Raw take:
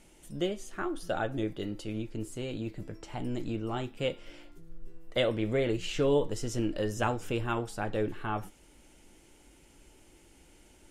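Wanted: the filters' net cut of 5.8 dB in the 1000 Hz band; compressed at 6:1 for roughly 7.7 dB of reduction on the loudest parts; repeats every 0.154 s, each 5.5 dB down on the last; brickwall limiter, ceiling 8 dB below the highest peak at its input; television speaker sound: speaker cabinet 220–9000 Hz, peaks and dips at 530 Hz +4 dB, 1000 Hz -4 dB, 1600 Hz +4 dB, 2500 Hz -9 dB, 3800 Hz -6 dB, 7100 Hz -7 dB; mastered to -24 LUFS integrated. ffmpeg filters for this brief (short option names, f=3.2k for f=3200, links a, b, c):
-af "equalizer=f=1k:t=o:g=-7.5,acompressor=threshold=-31dB:ratio=6,alimiter=level_in=5dB:limit=-24dB:level=0:latency=1,volume=-5dB,highpass=f=220:w=0.5412,highpass=f=220:w=1.3066,equalizer=f=530:t=q:w=4:g=4,equalizer=f=1k:t=q:w=4:g=-4,equalizer=f=1.6k:t=q:w=4:g=4,equalizer=f=2.5k:t=q:w=4:g=-9,equalizer=f=3.8k:t=q:w=4:g=-6,equalizer=f=7.1k:t=q:w=4:g=-7,lowpass=f=9k:w=0.5412,lowpass=f=9k:w=1.3066,aecho=1:1:154|308|462|616|770|924|1078:0.531|0.281|0.149|0.079|0.0419|0.0222|0.0118,volume=15.5dB"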